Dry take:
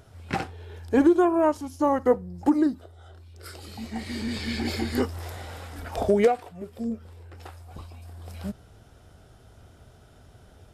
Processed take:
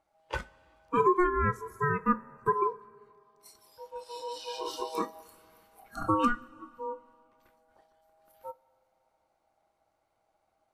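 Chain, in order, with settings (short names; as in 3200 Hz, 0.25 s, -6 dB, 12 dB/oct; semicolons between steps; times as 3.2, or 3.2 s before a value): ring modulator 720 Hz; spectral noise reduction 17 dB; two-slope reverb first 0.23 s, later 2.5 s, from -18 dB, DRR 13 dB; gain -3.5 dB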